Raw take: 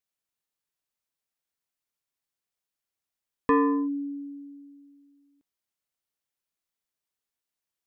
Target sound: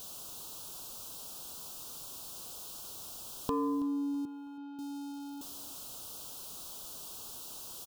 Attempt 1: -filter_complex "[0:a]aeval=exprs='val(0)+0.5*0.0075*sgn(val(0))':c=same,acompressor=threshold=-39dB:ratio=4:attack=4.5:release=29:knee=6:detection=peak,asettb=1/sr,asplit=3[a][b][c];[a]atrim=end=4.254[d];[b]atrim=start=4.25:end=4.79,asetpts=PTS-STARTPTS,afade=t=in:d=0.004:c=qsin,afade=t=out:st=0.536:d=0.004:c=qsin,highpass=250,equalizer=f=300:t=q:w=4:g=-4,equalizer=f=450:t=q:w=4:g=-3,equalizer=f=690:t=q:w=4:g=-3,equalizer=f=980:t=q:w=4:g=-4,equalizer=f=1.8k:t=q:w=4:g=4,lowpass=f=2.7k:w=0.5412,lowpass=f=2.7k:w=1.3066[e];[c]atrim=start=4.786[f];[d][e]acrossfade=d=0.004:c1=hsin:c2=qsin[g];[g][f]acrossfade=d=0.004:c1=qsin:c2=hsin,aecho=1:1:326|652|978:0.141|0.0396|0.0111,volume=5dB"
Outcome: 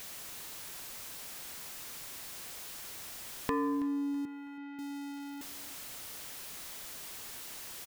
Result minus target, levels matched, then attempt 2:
2000 Hz band +13.5 dB
-filter_complex "[0:a]aeval=exprs='val(0)+0.5*0.0075*sgn(val(0))':c=same,acompressor=threshold=-39dB:ratio=4:attack=4.5:release=29:knee=6:detection=peak,asuperstop=centerf=2000:order=4:qfactor=1.1,asettb=1/sr,asplit=3[a][b][c];[a]atrim=end=4.254[d];[b]atrim=start=4.25:end=4.79,asetpts=PTS-STARTPTS,afade=t=in:d=0.004:c=qsin,afade=t=out:st=0.536:d=0.004:c=qsin,highpass=250,equalizer=f=300:t=q:w=4:g=-4,equalizer=f=450:t=q:w=4:g=-3,equalizer=f=690:t=q:w=4:g=-3,equalizer=f=980:t=q:w=4:g=-4,equalizer=f=1.8k:t=q:w=4:g=4,lowpass=f=2.7k:w=0.5412,lowpass=f=2.7k:w=1.3066[e];[c]atrim=start=4.786[f];[d][e]acrossfade=d=0.004:c1=hsin:c2=qsin[g];[g][f]acrossfade=d=0.004:c1=qsin:c2=hsin,aecho=1:1:326|652|978:0.141|0.0396|0.0111,volume=5dB"

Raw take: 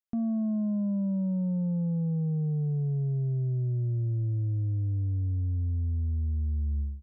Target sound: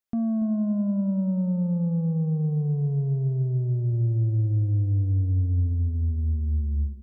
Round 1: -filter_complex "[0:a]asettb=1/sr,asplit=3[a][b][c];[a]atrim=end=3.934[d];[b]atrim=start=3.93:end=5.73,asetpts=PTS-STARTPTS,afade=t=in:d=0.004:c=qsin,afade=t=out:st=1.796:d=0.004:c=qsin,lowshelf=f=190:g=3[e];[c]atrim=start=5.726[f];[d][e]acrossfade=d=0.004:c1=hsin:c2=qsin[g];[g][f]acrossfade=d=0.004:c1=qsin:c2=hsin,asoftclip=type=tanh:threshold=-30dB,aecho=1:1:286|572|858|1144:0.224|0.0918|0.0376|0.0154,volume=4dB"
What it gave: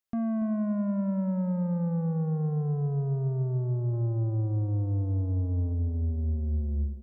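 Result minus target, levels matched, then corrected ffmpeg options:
soft clip: distortion +16 dB
-filter_complex "[0:a]asettb=1/sr,asplit=3[a][b][c];[a]atrim=end=3.934[d];[b]atrim=start=3.93:end=5.73,asetpts=PTS-STARTPTS,afade=t=in:d=0.004:c=qsin,afade=t=out:st=1.796:d=0.004:c=qsin,lowshelf=f=190:g=3[e];[c]atrim=start=5.726[f];[d][e]acrossfade=d=0.004:c1=hsin:c2=qsin[g];[g][f]acrossfade=d=0.004:c1=qsin:c2=hsin,asoftclip=type=tanh:threshold=-19dB,aecho=1:1:286|572|858|1144:0.224|0.0918|0.0376|0.0154,volume=4dB"

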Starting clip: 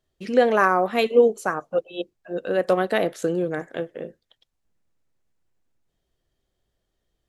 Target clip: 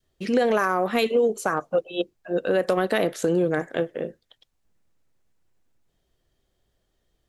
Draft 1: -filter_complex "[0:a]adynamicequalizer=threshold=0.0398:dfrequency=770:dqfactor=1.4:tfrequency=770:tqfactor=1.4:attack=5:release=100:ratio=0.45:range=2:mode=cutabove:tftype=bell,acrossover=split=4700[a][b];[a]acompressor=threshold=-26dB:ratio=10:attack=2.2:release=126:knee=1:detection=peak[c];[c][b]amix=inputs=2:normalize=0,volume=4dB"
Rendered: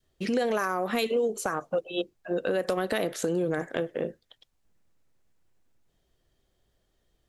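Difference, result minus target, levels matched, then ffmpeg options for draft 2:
compressor: peak gain reduction +6 dB
-filter_complex "[0:a]adynamicequalizer=threshold=0.0398:dfrequency=770:dqfactor=1.4:tfrequency=770:tqfactor=1.4:attack=5:release=100:ratio=0.45:range=2:mode=cutabove:tftype=bell,acrossover=split=4700[a][b];[a]acompressor=threshold=-19.5dB:ratio=10:attack=2.2:release=126:knee=1:detection=peak[c];[c][b]amix=inputs=2:normalize=0,volume=4dB"

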